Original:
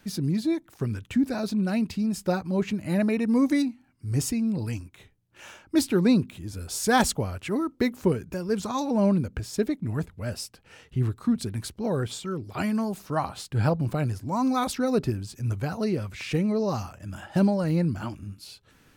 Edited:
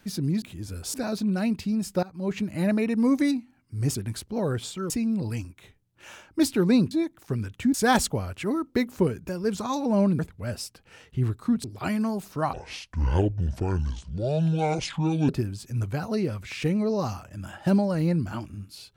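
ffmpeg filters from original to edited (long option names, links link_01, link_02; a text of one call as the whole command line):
ffmpeg -i in.wav -filter_complex "[0:a]asplit=12[link_01][link_02][link_03][link_04][link_05][link_06][link_07][link_08][link_09][link_10][link_11][link_12];[link_01]atrim=end=0.422[link_13];[link_02]atrim=start=6.268:end=6.792[link_14];[link_03]atrim=start=1.248:end=2.34,asetpts=PTS-STARTPTS,afade=type=out:start_time=1.088:duration=0.004:curve=hsin:silence=0.0841395[link_15];[link_04]atrim=start=2.34:end=4.262,asetpts=PTS-STARTPTS,afade=type=in:duration=0.36:silence=0.0841395[link_16];[link_05]atrim=start=11.428:end=12.382[link_17];[link_06]atrim=start=4.258:end=6.272[link_18];[link_07]atrim=start=0.418:end=1.252[link_19];[link_08]atrim=start=6.788:end=9.242[link_20];[link_09]atrim=start=9.978:end=11.432[link_21];[link_10]atrim=start=12.378:end=13.274[link_22];[link_11]atrim=start=13.27:end=14.98,asetpts=PTS-STARTPTS,asetrate=27342,aresample=44100[link_23];[link_12]atrim=start=14.976[link_24];[link_13][link_14]acrossfade=duration=0.004:curve1=hsin:curve2=hsin[link_25];[link_15][link_16]concat=n=2:v=0:a=1[link_26];[link_25][link_26]acrossfade=duration=0.004:curve1=hsin:curve2=hsin[link_27];[link_27][link_17]acrossfade=duration=0.004:curve1=hsin:curve2=hsin[link_28];[link_28][link_18]acrossfade=duration=0.004:curve1=hsin:curve2=hsin[link_29];[link_29][link_19]acrossfade=duration=0.004:curve1=hsin:curve2=hsin[link_30];[link_30][link_20]acrossfade=duration=0.004:curve1=hsin:curve2=hsin[link_31];[link_31][link_21]acrossfade=duration=0.004:curve1=hsin:curve2=hsin[link_32];[link_32][link_22]acrossfade=duration=0.004:curve1=hsin:curve2=hsin[link_33];[link_33][link_23]acrossfade=duration=0.004:curve1=hsin:curve2=hsin[link_34];[link_34][link_24]acrossfade=duration=0.004:curve1=hsin:curve2=hsin" out.wav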